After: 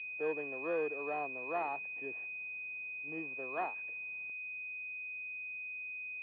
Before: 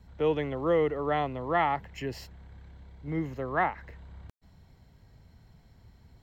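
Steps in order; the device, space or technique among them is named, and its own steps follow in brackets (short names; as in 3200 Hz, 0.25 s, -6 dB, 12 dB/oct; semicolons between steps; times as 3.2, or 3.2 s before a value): toy sound module (decimation joined by straight lines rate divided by 6×; pulse-width modulation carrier 2500 Hz; speaker cabinet 520–3600 Hz, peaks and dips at 560 Hz -6 dB, 870 Hz -7 dB, 1300 Hz -6 dB, 2100 Hz -3 dB, 3000 Hz +3 dB); gain -2.5 dB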